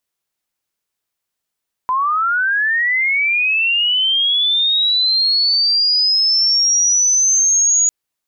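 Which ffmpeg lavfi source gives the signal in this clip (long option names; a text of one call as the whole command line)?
ffmpeg -f lavfi -i "aevalsrc='pow(10,(-14+3.5*t/6)/20)*sin(2*PI*(1000*t+5800*t*t/(2*6)))':duration=6:sample_rate=44100" out.wav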